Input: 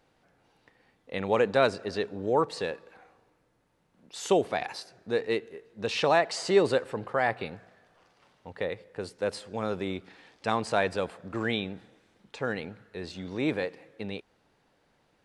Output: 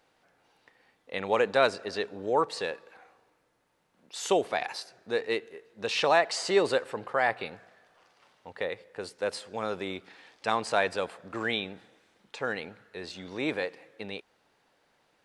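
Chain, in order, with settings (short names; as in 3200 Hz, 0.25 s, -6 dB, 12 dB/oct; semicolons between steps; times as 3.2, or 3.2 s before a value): low shelf 300 Hz -11.5 dB; gain +2 dB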